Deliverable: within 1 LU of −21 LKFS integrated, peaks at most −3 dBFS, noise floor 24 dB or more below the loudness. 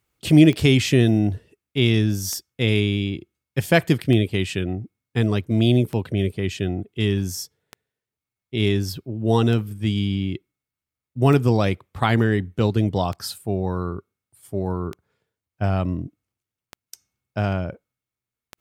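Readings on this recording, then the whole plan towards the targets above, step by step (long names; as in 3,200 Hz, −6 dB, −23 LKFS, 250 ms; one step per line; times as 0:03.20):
number of clicks 11; integrated loudness −22.0 LKFS; sample peak −2.0 dBFS; target loudness −21.0 LKFS
→ click removal
level +1 dB
brickwall limiter −3 dBFS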